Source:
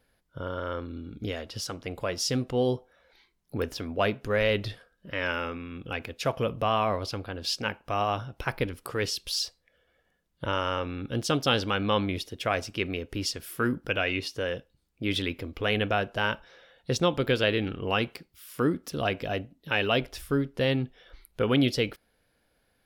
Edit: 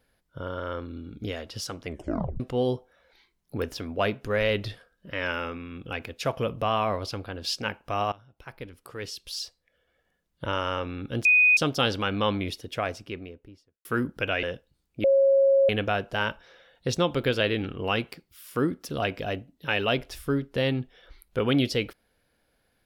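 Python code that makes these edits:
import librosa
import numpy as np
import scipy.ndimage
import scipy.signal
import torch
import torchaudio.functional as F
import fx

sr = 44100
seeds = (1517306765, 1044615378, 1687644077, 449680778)

y = fx.studio_fade_out(x, sr, start_s=12.19, length_s=1.34)
y = fx.edit(y, sr, fx.tape_stop(start_s=1.86, length_s=0.54),
    fx.fade_in_from(start_s=8.12, length_s=2.39, floor_db=-21.5),
    fx.insert_tone(at_s=11.25, length_s=0.32, hz=2490.0, db=-15.0),
    fx.cut(start_s=14.11, length_s=0.35),
    fx.bleep(start_s=15.07, length_s=0.65, hz=546.0, db=-16.0), tone=tone)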